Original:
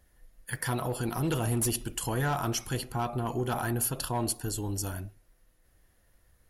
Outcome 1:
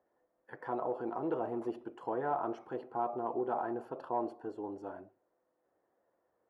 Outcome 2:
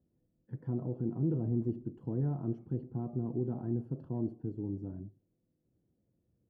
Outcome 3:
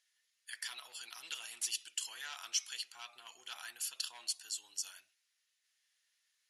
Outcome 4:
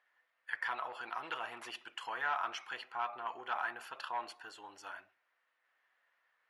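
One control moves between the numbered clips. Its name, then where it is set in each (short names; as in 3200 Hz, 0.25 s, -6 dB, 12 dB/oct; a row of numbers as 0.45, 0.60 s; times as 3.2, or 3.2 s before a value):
Butterworth band-pass, frequency: 590, 210, 4400, 1600 Hz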